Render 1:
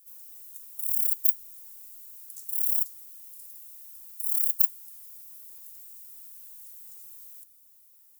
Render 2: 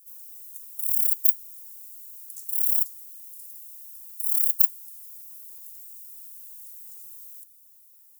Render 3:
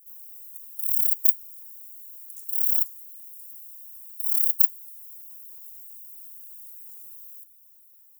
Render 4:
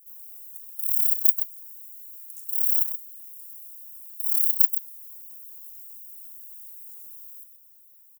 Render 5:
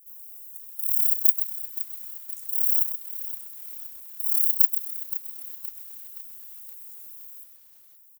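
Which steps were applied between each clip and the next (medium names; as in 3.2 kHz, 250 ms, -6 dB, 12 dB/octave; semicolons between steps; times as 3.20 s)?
tone controls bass +1 dB, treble +7 dB; trim -4 dB
treble shelf 9.5 kHz +10.5 dB; trim -9.5 dB
delay 129 ms -9 dB
bit-crushed delay 520 ms, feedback 55%, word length 7-bit, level -12 dB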